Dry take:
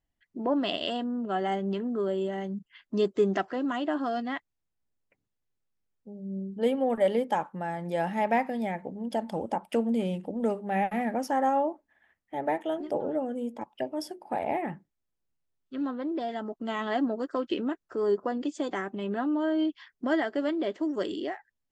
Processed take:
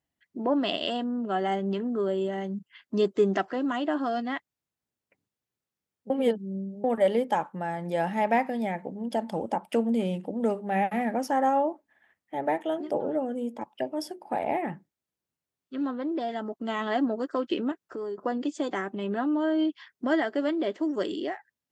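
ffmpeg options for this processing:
ffmpeg -i in.wav -filter_complex "[0:a]asettb=1/sr,asplit=3[link_01][link_02][link_03];[link_01]atrim=end=17.714[link_04];[link_02]atrim=start=17.71:end=18.18,asetpts=PTS-STARTPTS,afade=type=in:duration=0.004:curve=qsin,afade=type=out:start_time=0.466:duration=0.004:curve=qsin,acompressor=threshold=-33dB:ratio=6:attack=3.2:release=140:knee=1:detection=peak[link_05];[link_03]atrim=start=18.176[link_06];[link_04][link_05]acrossfade=duration=0.004:curve1=hsin:curve2=qsin[link_07];[link_07][link_06]acrossfade=duration=0.004:curve1=qsin:curve2=hsin,asplit=3[link_08][link_09][link_10];[link_08]atrim=end=6.102[link_11];[link_09]atrim=start=6.098:end=6.842,asetpts=PTS-STARTPTS,areverse[link_12];[link_10]atrim=start=6.838[link_13];[link_11][link_12]acrossfade=duration=0.004:curve1=hsin:curve2=hsin[link_14];[link_14][link_13]acrossfade=duration=0.004:curve1=hsin:curve2=hsin,highpass=100,volume=1.5dB" out.wav

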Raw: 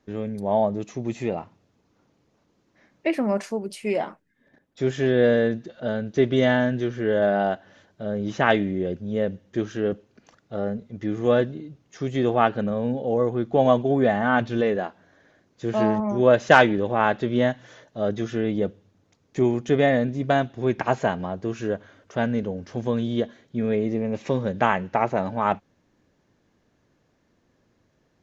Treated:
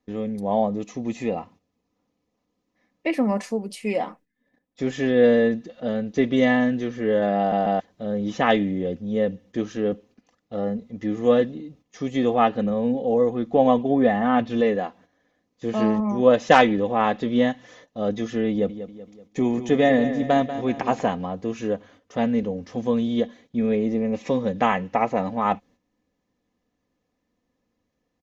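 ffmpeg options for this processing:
ffmpeg -i in.wav -filter_complex "[0:a]asettb=1/sr,asplit=3[link_01][link_02][link_03];[link_01]atrim=end=13.544[link_04];[link_02]atrim=start=13.54:end=14.5,asetpts=PTS-STARTPTS,afade=type=in:duration=0.004:curve=qsin,afade=type=out:start_time=0.956:duration=0.004:curve=qsin,highshelf=frequency=6300:gain=-11.5[link_05];[link_03]atrim=start=14.496[link_06];[link_04][link_05]acrossfade=duration=0.004:curve1=hsin:curve2=qsin[link_07];[link_07][link_06]acrossfade=duration=0.004:curve1=qsin:curve2=hsin,asettb=1/sr,asplit=3[link_08][link_09][link_10];[link_08]atrim=end=18.504[link_11];[link_09]atrim=start=18.5:end=21.08,asetpts=PTS-STARTPTS,afade=type=in:duration=0.004:curve=qsin,afade=type=out:start_time=2.576:duration=0.004:curve=qsin,aecho=1:1:190|380|570|760|950:0.266|0.122|0.0563|0.0259|0.0119,atrim=end_sample=113778[link_12];[link_10]atrim=start=21.076[link_13];[link_11][link_12]acrossfade=duration=0.004:curve1=hsin:curve2=qsin[link_14];[link_14][link_13]acrossfade=duration=0.004:curve1=qsin:curve2=hsin,asplit=4[link_15][link_16][link_17][link_18];[link_15]atrim=end=7.522[link_19];[link_16]atrim=start=7.378:end=7.522[link_20];[link_17]atrim=start=7.378:end=7.522[link_21];[link_18]atrim=start=7.798[link_22];[link_19][link_20]acrossfade=duration=0.004:curve1=hsin:curve2=hsin[link_23];[link_23][link_21]acrossfade=duration=0.004:curve1=hsin:curve2=hsin[link_24];[link_24][link_22]acrossfade=duration=0.004:curve1=hsin:curve2=hsin,bandreject=frequency=1500:width=6.7,agate=range=-10dB:threshold=-50dB:ratio=16:detection=peak,aecho=1:1:4:0.52" out.wav

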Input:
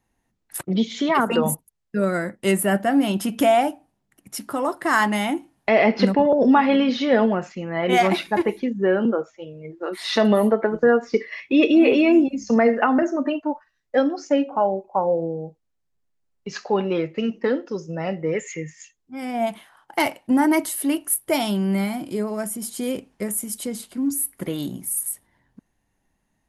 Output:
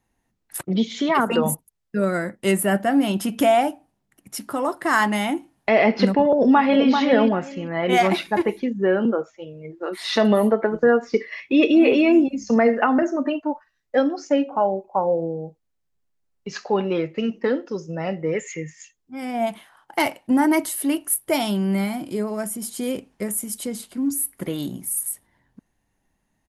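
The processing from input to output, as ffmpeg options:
ffmpeg -i in.wav -filter_complex "[0:a]asplit=2[link_01][link_02];[link_02]afade=type=in:start_time=6.33:duration=0.01,afade=type=out:start_time=6.89:duration=0.01,aecho=0:1:390|780|1170:0.530884|0.106177|0.0212354[link_03];[link_01][link_03]amix=inputs=2:normalize=0" out.wav

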